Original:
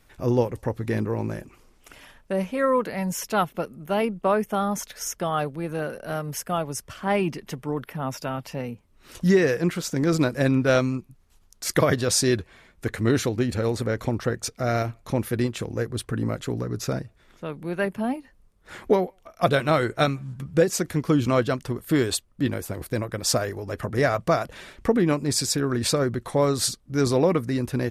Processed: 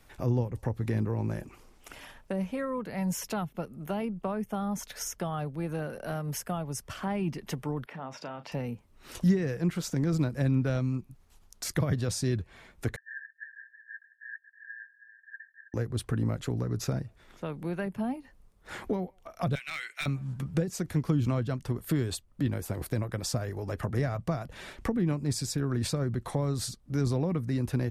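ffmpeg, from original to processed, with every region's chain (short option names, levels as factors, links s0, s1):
-filter_complex "[0:a]asettb=1/sr,asplit=3[s0][s1][s2];[s0]atrim=end=7.864[s3];[s1]atrim=start=7.86:end=8.52,asetpts=PTS-STARTPTS,afade=t=in:d=0.004:c=qsin,afade=t=out:st=0.656:d=0.004:c=qsin,acompressor=threshold=0.0126:ratio=2.5:attack=3.2:release=140:knee=1:detection=peak,highpass=170,lowpass=4500,asplit=2[s4][s5];[s5]adelay=36,volume=0.224[s6];[s4][s6]amix=inputs=2:normalize=0,atrim=end_sample=29106[s7];[s2]atrim=start=8.516[s8];[s3][s7]acrossfade=d=0.004:c1=hsin:c2=qsin[s9];[s9][s8]acrossfade=d=0.004:c1=qsin:c2=hsin,asettb=1/sr,asplit=3[s10][s11][s12];[s10]atrim=end=12.964[s13];[s11]atrim=start=12.96:end=15.74,asetpts=PTS-STARTPTS,afade=t=in:d=0.004:c=qsin,afade=t=out:st=2.776:d=0.004:c=qsin,asuperpass=centerf=1700:order=20:qfactor=7.4,aecho=1:1:321:0.251,atrim=end_sample=122598[s14];[s12]atrim=start=15.736[s15];[s13][s14]acrossfade=d=0.004:c1=hsin:c2=qsin[s16];[s16][s15]acrossfade=d=0.004:c1=qsin:c2=hsin,asettb=1/sr,asplit=3[s17][s18][s19];[s17]atrim=end=19.554[s20];[s18]atrim=start=19.55:end=20.06,asetpts=PTS-STARTPTS,afade=t=in:d=0.004:c=qsin,afade=t=out:st=0.506:d=0.004:c=qsin,highpass=f=2300:t=q:w=3.2,asoftclip=type=hard:threshold=0.112[s21];[s19]atrim=start=20.056[s22];[s20][s21]acrossfade=d=0.004:c1=hsin:c2=qsin[s23];[s23][s22]acrossfade=d=0.004:c1=qsin:c2=hsin,equalizer=f=810:t=o:w=0.54:g=3,acrossover=split=200[s24][s25];[s25]acompressor=threshold=0.02:ratio=5[s26];[s24][s26]amix=inputs=2:normalize=0"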